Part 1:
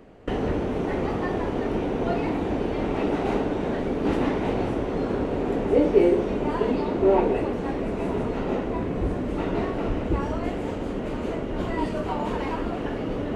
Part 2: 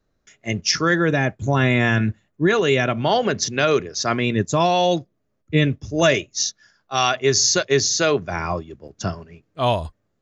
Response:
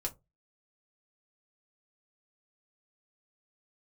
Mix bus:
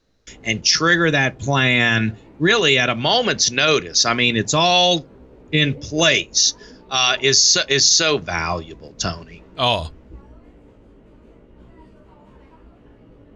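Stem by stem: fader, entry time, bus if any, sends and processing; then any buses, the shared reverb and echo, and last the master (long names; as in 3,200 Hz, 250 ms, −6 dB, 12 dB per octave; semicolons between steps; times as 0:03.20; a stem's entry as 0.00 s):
−19.0 dB, 0.00 s, no send, low-shelf EQ 120 Hz +10.5 dB; notch filter 720 Hz, Q 12; chorus effect 0.41 Hz, delay 15 ms, depth 3.1 ms
−2.0 dB, 0.00 s, send −12.5 dB, parametric band 4,100 Hz +13.5 dB 2.2 octaves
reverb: on, RT60 0.20 s, pre-delay 4 ms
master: brickwall limiter −4 dBFS, peak gain reduction 9.5 dB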